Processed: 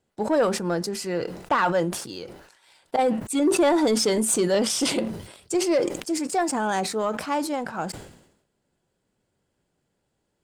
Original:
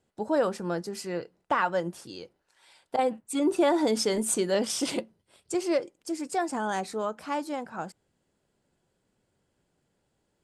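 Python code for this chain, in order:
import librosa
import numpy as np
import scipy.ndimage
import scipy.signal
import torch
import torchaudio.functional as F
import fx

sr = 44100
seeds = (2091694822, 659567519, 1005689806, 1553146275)

y = fx.leveller(x, sr, passes=1)
y = fx.sustainer(y, sr, db_per_s=73.0)
y = F.gain(torch.from_numpy(y), 1.5).numpy()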